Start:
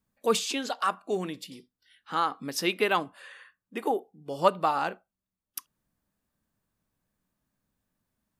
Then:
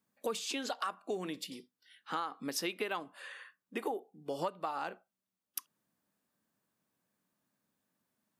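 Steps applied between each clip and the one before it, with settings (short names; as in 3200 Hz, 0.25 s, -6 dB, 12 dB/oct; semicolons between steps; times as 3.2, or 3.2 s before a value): HPF 190 Hz 12 dB/oct; compressor 8:1, threshold -33 dBFS, peak gain reduction 17.5 dB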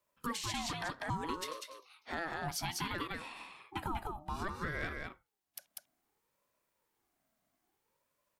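echo 0.195 s -5 dB; limiter -27.5 dBFS, peak gain reduction 8.5 dB; ring modulator with a swept carrier 620 Hz, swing 30%, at 0.61 Hz; gain +3 dB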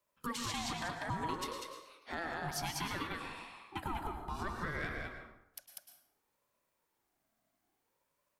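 plate-style reverb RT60 0.84 s, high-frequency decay 0.6×, pre-delay 95 ms, DRR 5 dB; gain -1.5 dB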